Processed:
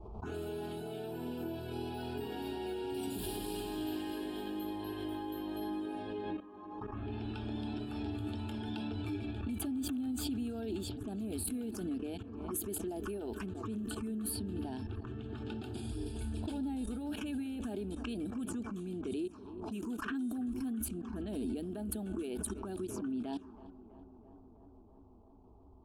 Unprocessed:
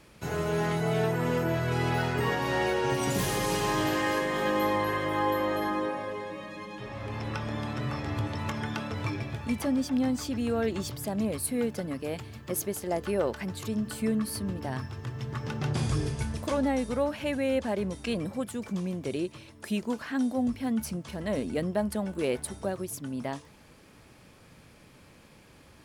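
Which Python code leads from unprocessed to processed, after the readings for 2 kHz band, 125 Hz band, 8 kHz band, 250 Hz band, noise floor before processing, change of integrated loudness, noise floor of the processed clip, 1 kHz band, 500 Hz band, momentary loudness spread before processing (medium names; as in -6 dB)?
-16.0 dB, -11.0 dB, -6.5 dB, -6.5 dB, -55 dBFS, -9.0 dB, -57 dBFS, -14.0 dB, -11.5 dB, 8 LU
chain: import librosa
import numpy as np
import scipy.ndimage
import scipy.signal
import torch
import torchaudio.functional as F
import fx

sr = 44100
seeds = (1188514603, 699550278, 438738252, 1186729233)

p1 = fx.env_lowpass(x, sr, base_hz=450.0, full_db=-27.0)
p2 = fx.level_steps(p1, sr, step_db=20)
p3 = fx.env_phaser(p2, sr, low_hz=250.0, high_hz=1200.0, full_db=-36.0)
p4 = fx.fixed_phaser(p3, sr, hz=540.0, stages=6)
p5 = p4 + fx.echo_tape(p4, sr, ms=329, feedback_pct=90, wet_db=-17.5, lp_hz=1700.0, drive_db=32.0, wow_cents=31, dry=0)
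p6 = fx.pre_swell(p5, sr, db_per_s=38.0)
y = F.gain(torch.from_numpy(p6), 7.0).numpy()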